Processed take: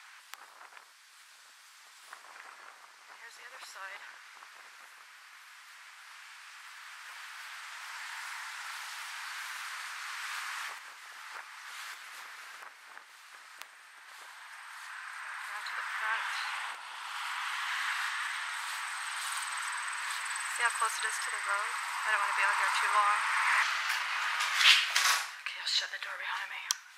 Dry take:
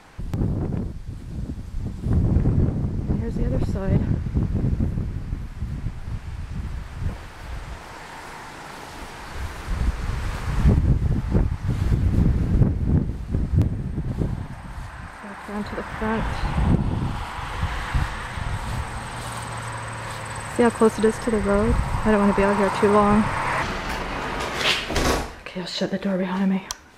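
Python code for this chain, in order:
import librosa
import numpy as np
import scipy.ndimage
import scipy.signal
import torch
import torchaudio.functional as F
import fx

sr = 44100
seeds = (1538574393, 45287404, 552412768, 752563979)

y = scipy.signal.sosfilt(scipy.signal.butter(4, 1200.0, 'highpass', fs=sr, output='sos'), x)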